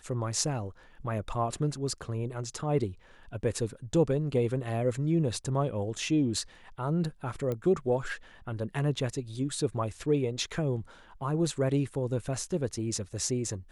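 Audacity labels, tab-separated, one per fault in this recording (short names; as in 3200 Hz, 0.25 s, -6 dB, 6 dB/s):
7.520000	7.520000	pop -21 dBFS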